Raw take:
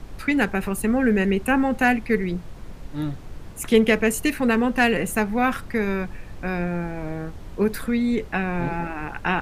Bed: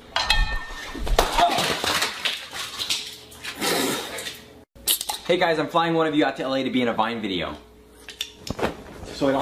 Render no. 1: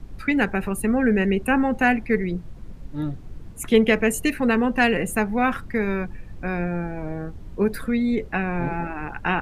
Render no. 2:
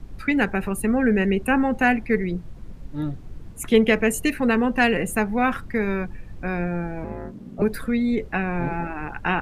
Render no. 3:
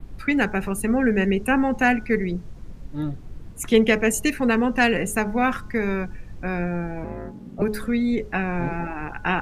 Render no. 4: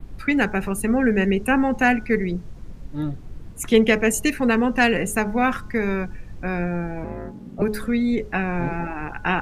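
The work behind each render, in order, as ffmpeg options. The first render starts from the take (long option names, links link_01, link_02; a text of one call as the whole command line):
ffmpeg -i in.wav -af "afftdn=noise_reduction=9:noise_floor=-38" out.wav
ffmpeg -i in.wav -filter_complex "[0:a]asettb=1/sr,asplit=3[link_01][link_02][link_03];[link_01]atrim=end=7.044[link_04];[link_02]atrim=start=7.04:end=7.62,asetpts=PTS-STARTPTS,afade=type=in:duration=0.004:curve=qsin,afade=type=out:start_time=0.576:duration=0.004:curve=qsin,aeval=exprs='val(0)*sin(2*PI*210*n/s)':channel_layout=same[link_05];[link_03]atrim=start=7.616[link_06];[link_04][link_05]acrossfade=duration=0.004:curve1=hsin:curve2=qsin[link_07];[link_07][link_06]acrossfade=duration=0.004:curve1=qsin:curve2=hsin" out.wav
ffmpeg -i in.wav -af "bandreject=frequency=211.3:width_type=h:width=4,bandreject=frequency=422.6:width_type=h:width=4,bandreject=frequency=633.9:width_type=h:width=4,bandreject=frequency=845.2:width_type=h:width=4,bandreject=frequency=1056.5:width_type=h:width=4,bandreject=frequency=1267.8:width_type=h:width=4,bandreject=frequency=1479.1:width_type=h:width=4,adynamicequalizer=threshold=0.00316:dfrequency=6100:dqfactor=1.7:tfrequency=6100:tqfactor=1.7:attack=5:release=100:ratio=0.375:range=3.5:mode=boostabove:tftype=bell" out.wav
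ffmpeg -i in.wav -af "volume=1dB" out.wav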